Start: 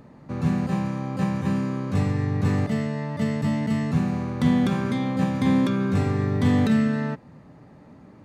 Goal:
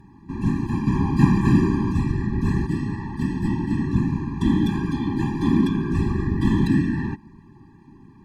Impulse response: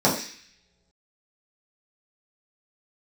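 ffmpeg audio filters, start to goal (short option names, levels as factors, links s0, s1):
-filter_complex "[0:a]asettb=1/sr,asplit=3[s0][s1][s2];[s0]atrim=end=0.874[s3];[s1]atrim=start=0.87:end=1.92,asetpts=PTS-STARTPTS,afade=t=in:d=0.004:c=qsin,afade=t=out:st=1.046:d=0.004:c=qsin,acontrast=88[s4];[s2]atrim=start=1.916[s5];[s3][s4]acrossfade=d=0.004:c1=hsin:c2=qsin[s6];[s6][s5]acrossfade=d=0.004:c1=qsin:c2=hsin,asettb=1/sr,asplit=3[s7][s8][s9];[s7]atrim=end=3.474[s10];[s8]atrim=start=3.47:end=4.37,asetpts=PTS-STARTPTS,afade=t=in:d=0.004:c=qsin,afade=t=out:st=0.896:d=0.004:c=qsin,highshelf=f=6900:g=-6.5[s11];[s9]atrim=start=4.366[s12];[s10][s11]acrossfade=d=0.004:c1=hsin:c2=qsin[s13];[s13][s12]acrossfade=d=0.004:c1=qsin:c2=hsin,afftfilt=real='hypot(re,im)*cos(2*PI*random(0))':imag='hypot(re,im)*sin(2*PI*random(1))':win_size=512:overlap=0.75,afftfilt=real='re*eq(mod(floor(b*sr/1024/390),2),0)':imag='im*eq(mod(floor(b*sr/1024/390),2),0)':win_size=1024:overlap=0.75,volume=2.24"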